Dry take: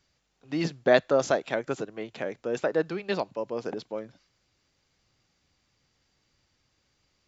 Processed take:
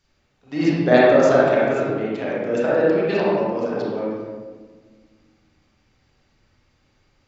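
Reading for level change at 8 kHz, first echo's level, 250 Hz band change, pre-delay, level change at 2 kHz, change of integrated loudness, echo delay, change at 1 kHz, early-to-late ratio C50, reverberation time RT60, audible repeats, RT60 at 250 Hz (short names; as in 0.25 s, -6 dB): n/a, none, +12.0 dB, 29 ms, +8.0 dB, +10.0 dB, none, +9.5 dB, -4.5 dB, 1.5 s, none, 2.4 s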